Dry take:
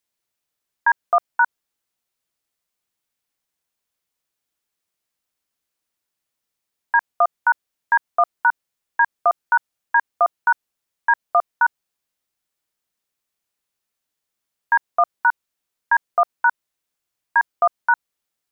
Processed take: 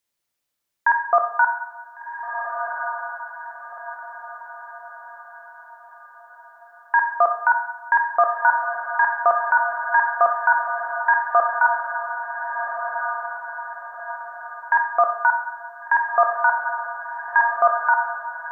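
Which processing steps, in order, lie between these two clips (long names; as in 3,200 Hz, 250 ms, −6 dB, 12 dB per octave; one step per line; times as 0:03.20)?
feedback delay with all-pass diffusion 1,493 ms, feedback 44%, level −7 dB
coupled-rooms reverb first 0.83 s, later 2.8 s, from −18 dB, DRR 4 dB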